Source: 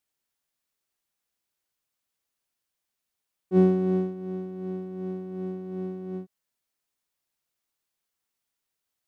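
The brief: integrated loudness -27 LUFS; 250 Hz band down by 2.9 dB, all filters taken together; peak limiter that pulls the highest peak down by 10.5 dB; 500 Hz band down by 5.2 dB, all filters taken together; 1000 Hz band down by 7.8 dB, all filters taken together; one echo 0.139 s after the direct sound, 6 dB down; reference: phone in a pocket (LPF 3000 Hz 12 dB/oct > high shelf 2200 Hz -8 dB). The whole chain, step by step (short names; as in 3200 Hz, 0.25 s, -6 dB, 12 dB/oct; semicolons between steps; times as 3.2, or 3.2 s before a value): bell 250 Hz -3 dB; bell 500 Hz -5 dB; bell 1000 Hz -7.5 dB; limiter -24.5 dBFS; LPF 3000 Hz 12 dB/oct; high shelf 2200 Hz -8 dB; echo 0.139 s -6 dB; gain +9 dB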